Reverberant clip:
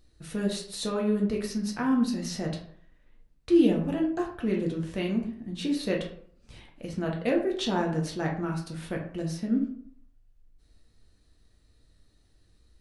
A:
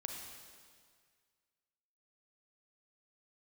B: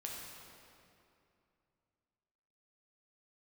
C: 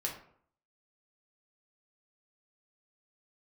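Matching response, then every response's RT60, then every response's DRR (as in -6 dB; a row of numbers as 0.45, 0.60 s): C; 1.9, 2.6, 0.60 s; 1.5, -2.5, -1.0 dB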